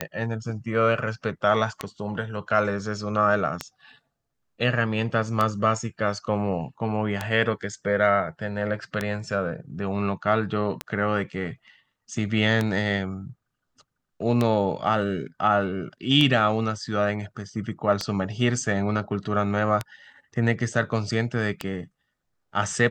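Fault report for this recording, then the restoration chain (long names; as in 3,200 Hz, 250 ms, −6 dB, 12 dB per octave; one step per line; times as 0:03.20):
scratch tick 33 1/3 rpm −10 dBFS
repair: click removal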